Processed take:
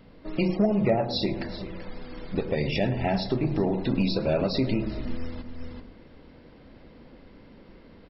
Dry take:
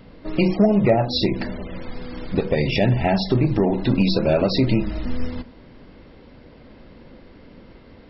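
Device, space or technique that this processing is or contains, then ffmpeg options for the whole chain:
ducked delay: -filter_complex "[0:a]bandreject=f=60:t=h:w=6,bandreject=f=120:t=h:w=6,asplit=2[s0][s1];[s1]adelay=107,lowpass=f=1200:p=1,volume=0.316,asplit=2[s2][s3];[s3]adelay=107,lowpass=f=1200:p=1,volume=0.43,asplit=2[s4][s5];[s5]adelay=107,lowpass=f=1200:p=1,volume=0.43,asplit=2[s6][s7];[s7]adelay=107,lowpass=f=1200:p=1,volume=0.43,asplit=2[s8][s9];[s9]adelay=107,lowpass=f=1200:p=1,volume=0.43[s10];[s0][s2][s4][s6][s8][s10]amix=inputs=6:normalize=0,asplit=3[s11][s12][s13];[s12]adelay=384,volume=0.631[s14];[s13]apad=whole_len=437970[s15];[s14][s15]sidechaincompress=threshold=0.02:ratio=8:attack=5.2:release=303[s16];[s11][s16]amix=inputs=2:normalize=0,volume=0.473"

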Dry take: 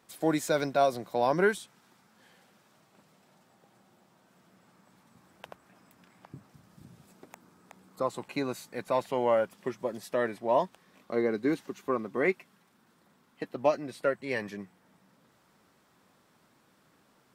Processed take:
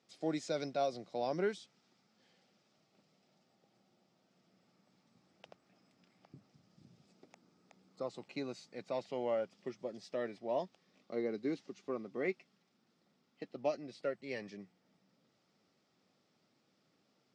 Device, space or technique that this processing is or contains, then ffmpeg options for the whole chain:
car door speaker: -af "highpass=110,equalizer=f=1000:t=q:w=4:g=-10,equalizer=f=1600:t=q:w=4:g=-8,equalizer=f=5000:t=q:w=4:g=6,lowpass=f=6700:w=0.5412,lowpass=f=6700:w=1.3066,volume=0.376"

